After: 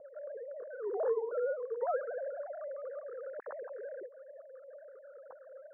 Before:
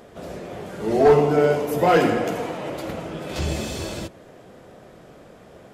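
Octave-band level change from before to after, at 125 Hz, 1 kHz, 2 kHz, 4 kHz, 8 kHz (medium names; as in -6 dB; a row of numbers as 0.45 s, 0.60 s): under -40 dB, -19.5 dB, -20.5 dB, under -40 dB, under -40 dB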